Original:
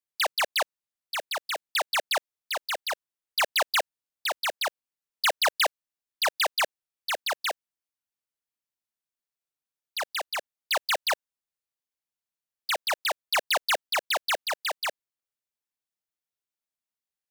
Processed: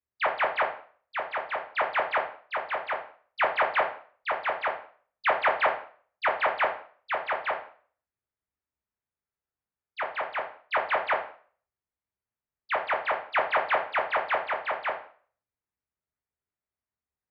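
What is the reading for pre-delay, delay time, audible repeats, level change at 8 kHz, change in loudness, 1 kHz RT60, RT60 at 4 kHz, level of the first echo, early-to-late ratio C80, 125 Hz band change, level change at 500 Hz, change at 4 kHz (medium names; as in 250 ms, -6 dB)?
6 ms, no echo, no echo, under -40 dB, -0.5 dB, 0.45 s, 0.45 s, no echo, 13.0 dB, no reading, +3.5 dB, -13.5 dB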